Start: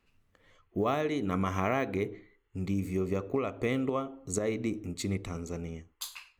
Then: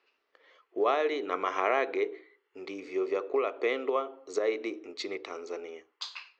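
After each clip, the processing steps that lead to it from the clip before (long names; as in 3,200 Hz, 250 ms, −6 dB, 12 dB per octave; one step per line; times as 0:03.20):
elliptic band-pass filter 380–5,100 Hz, stop band 40 dB
level +4 dB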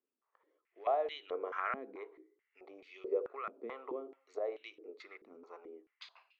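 band-pass on a step sequencer 4.6 Hz 220–3,100 Hz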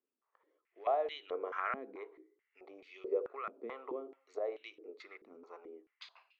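no processing that can be heard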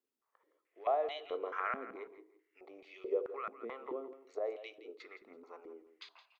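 repeating echo 167 ms, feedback 20%, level −14 dB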